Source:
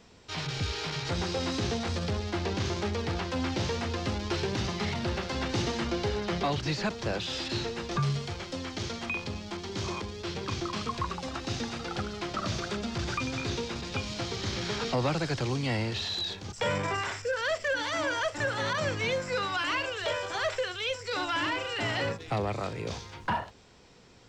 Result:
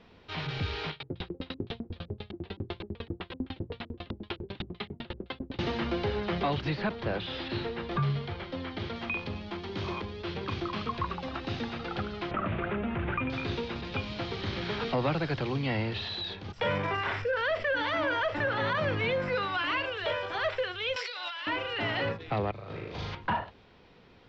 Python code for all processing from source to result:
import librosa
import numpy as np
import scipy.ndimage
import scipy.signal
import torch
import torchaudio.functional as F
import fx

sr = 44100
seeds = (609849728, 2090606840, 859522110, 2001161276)

y = fx.chain(x, sr, fx.filter_lfo_lowpass(shape='square', hz=3.9, low_hz=330.0, high_hz=3600.0, q=2.4),
    fx.tremolo_decay(direction='decaying', hz=10.0, depth_db=35), at=(0.9, 5.59))
y = fx.chain(y, sr, fx.lowpass(hz=4400.0, slope=12),
    fx.notch(hz=2600.0, q=23.0), at=(6.69, 8.96))
y = fx.chain(y, sr, fx.steep_lowpass(hz=2700.0, slope=36),
    fx.env_flatten(amount_pct=50), at=(12.31, 13.3))
y = fx.chain(y, sr, fx.high_shelf(hz=5400.0, db=-9.0),
    fx.env_flatten(amount_pct=50), at=(17.05, 19.35))
y = fx.chain(y, sr, fx.highpass(hz=510.0, slope=24),
    fx.peak_eq(hz=4500.0, db=13.0, octaves=2.1),
    fx.over_compress(threshold_db=-35.0, ratio=-1.0), at=(20.96, 21.47))
y = fx.chain(y, sr, fx.over_compress(threshold_db=-40.0, ratio=-0.5),
    fx.room_flutter(wall_m=6.7, rt60_s=1.0), at=(22.51, 23.15))
y = scipy.signal.sosfilt(scipy.signal.butter(4, 3800.0, 'lowpass', fs=sr, output='sos'), y)
y = fx.hum_notches(y, sr, base_hz=60, count=2)